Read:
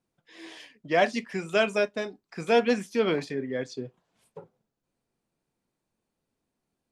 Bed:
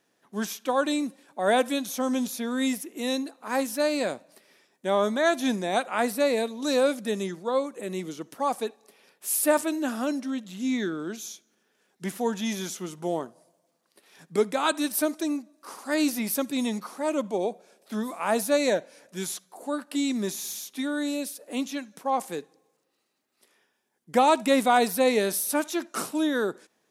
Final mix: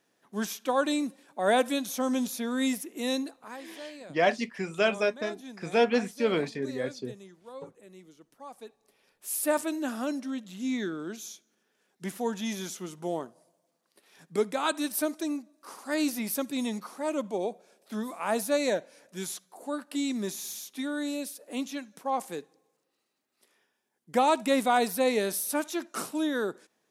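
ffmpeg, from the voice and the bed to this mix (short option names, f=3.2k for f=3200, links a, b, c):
-filter_complex "[0:a]adelay=3250,volume=-1.5dB[a];[1:a]volume=13.5dB,afade=t=out:st=3.3:d=0.27:silence=0.141254,afade=t=in:st=8.52:d=1.15:silence=0.177828[b];[a][b]amix=inputs=2:normalize=0"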